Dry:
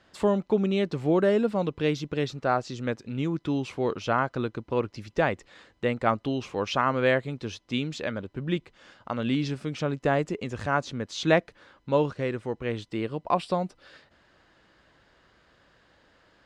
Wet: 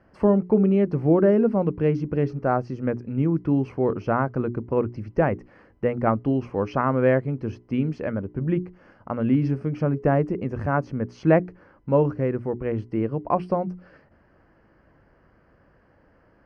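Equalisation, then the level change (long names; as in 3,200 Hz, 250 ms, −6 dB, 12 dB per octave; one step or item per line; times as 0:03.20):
moving average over 12 samples
low-shelf EQ 500 Hz +8.5 dB
mains-hum notches 60/120/180/240/300/360/420 Hz
0.0 dB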